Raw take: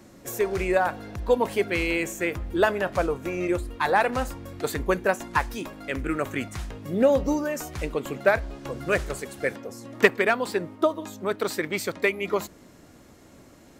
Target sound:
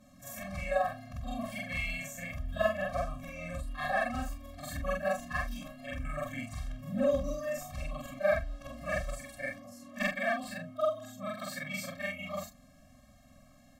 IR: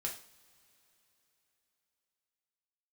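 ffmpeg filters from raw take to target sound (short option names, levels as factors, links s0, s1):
-af "afftfilt=real='re':imag='-im':win_size=4096:overlap=0.75,asubboost=boost=2:cutoff=58,afftfilt=real='re*eq(mod(floor(b*sr/1024/260),2),0)':imag='im*eq(mod(floor(b*sr/1024/260),2),0)':win_size=1024:overlap=0.75,volume=0.891"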